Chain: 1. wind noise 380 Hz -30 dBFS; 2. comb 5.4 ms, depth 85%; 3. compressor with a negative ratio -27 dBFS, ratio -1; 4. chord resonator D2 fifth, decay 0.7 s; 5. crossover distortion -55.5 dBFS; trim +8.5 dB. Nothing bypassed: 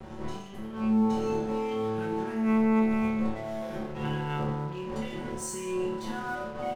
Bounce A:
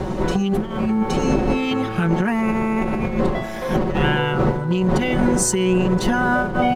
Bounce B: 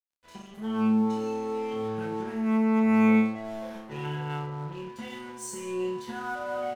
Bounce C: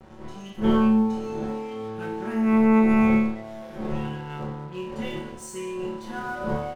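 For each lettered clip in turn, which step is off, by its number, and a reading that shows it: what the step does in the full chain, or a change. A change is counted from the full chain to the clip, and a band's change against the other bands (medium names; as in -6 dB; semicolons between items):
4, 250 Hz band -5.5 dB; 1, 2 kHz band +2.5 dB; 3, momentary loudness spread change +6 LU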